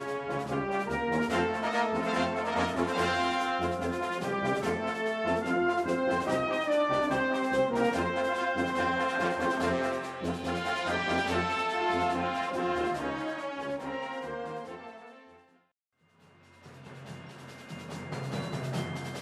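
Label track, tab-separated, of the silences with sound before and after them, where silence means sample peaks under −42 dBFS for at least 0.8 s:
15.140000	16.660000	silence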